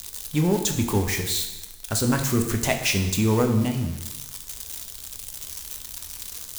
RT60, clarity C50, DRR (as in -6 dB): 1.0 s, 7.5 dB, 4.0 dB